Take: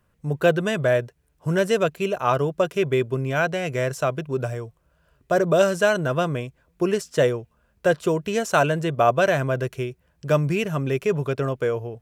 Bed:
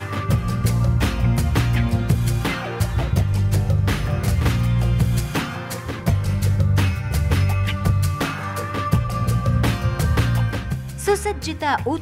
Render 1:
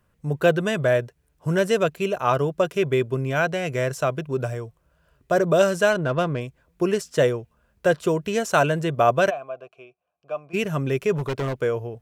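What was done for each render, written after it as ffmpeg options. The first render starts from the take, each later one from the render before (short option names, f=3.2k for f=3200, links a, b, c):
-filter_complex "[0:a]asettb=1/sr,asplit=3[a][b][c];[a]atrim=end=5.924[d];[b]atrim=start=5.92:end=6.41,asetpts=PTS-STARTPTS,afade=t=in:d=0.004:c=qsin,afade=t=out:st=0.486:d=0.004:c=qsin,adynamicsmooth=sensitivity=3:basefreq=2.5k[e];[c]atrim=start=6.406[f];[d][e]acrossfade=d=0.004:c1=hsin:c2=qsin[g];[g][f]acrossfade=d=0.004:c1=qsin:c2=hsin,asplit=3[h][i][j];[h]afade=t=out:st=9.29:d=0.02[k];[i]asplit=3[l][m][n];[l]bandpass=f=730:t=q:w=8,volume=0dB[o];[m]bandpass=f=1.09k:t=q:w=8,volume=-6dB[p];[n]bandpass=f=2.44k:t=q:w=8,volume=-9dB[q];[o][p][q]amix=inputs=3:normalize=0,afade=t=in:st=9.29:d=0.02,afade=t=out:st=10.53:d=0.02[r];[j]afade=t=in:st=10.53:d=0.02[s];[k][r][s]amix=inputs=3:normalize=0,asettb=1/sr,asplit=3[t][u][v];[t]atrim=end=11.154[w];[u]atrim=start=11.15:end=11.62,asetpts=PTS-STARTPTS,afade=t=in:d=0.004:c=qsin,afade=t=out:st=0.466:d=0.004:c=qsin,aeval=exprs='0.1*(abs(mod(val(0)/0.1+3,4)-2)-1)':c=same[x];[v]atrim=start=11.616[y];[w][x]acrossfade=d=0.004:c1=hsin:c2=qsin[z];[z][y]acrossfade=d=0.004:c1=qsin:c2=hsin"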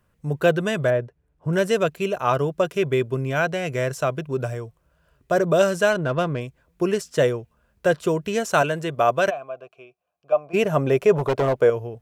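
-filter_complex "[0:a]asettb=1/sr,asplit=3[a][b][c];[a]atrim=end=0.904[d];[b]atrim=start=0.9:end=1.53,asetpts=PTS-STARTPTS,afade=t=in:d=0.004:c=qsin,afade=t=out:st=0.626:d=0.004:c=qsin,lowpass=f=1.1k:p=1[e];[c]atrim=start=1.526[f];[d][e]acrossfade=d=0.004:c1=hsin:c2=qsin[g];[g][f]acrossfade=d=0.004:c1=qsin:c2=hsin,asettb=1/sr,asplit=3[h][i][j];[h]atrim=end=8.624[k];[i]atrim=start=8.62:end=9.27,asetpts=PTS-STARTPTS,afade=t=in:d=0.004:c=qsin,afade=t=out:st=0.646:d=0.004:c=qsin,lowshelf=f=250:g=-7[l];[j]atrim=start=9.266[m];[k][l]acrossfade=d=0.004:c1=hsin:c2=qsin[n];[n][m]acrossfade=d=0.004:c1=qsin:c2=hsin,asettb=1/sr,asplit=3[o][p][q];[o]atrim=end=10.324[r];[p]atrim=start=10.32:end=11.7,asetpts=PTS-STARTPTS,afade=t=in:d=0.004:c=qsin,afade=t=out:st=1.376:d=0.004:c=qsin,equalizer=f=670:w=0.94:g=11[s];[q]atrim=start=11.696[t];[r][s]acrossfade=d=0.004:c1=hsin:c2=qsin[u];[u][t]acrossfade=d=0.004:c1=qsin:c2=hsin"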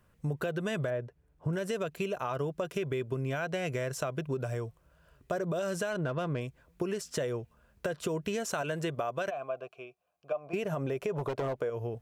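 -af "alimiter=limit=-17dB:level=0:latency=1:release=117,acompressor=threshold=-30dB:ratio=5"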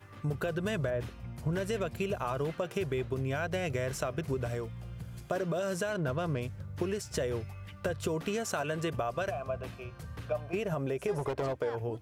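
-filter_complex "[1:a]volume=-24.5dB[a];[0:a][a]amix=inputs=2:normalize=0"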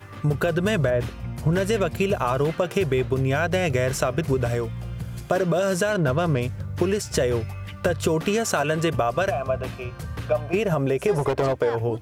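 -af "volume=10.5dB"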